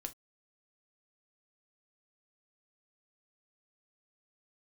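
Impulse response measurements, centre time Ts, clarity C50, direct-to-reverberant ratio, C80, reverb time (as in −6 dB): 5 ms, 19.0 dB, 6.0 dB, 41.0 dB, non-exponential decay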